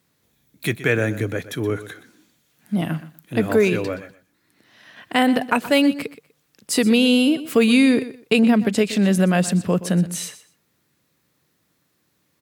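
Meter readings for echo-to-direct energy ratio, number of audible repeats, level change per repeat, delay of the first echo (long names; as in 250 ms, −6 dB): −15.0 dB, 2, −14.0 dB, 123 ms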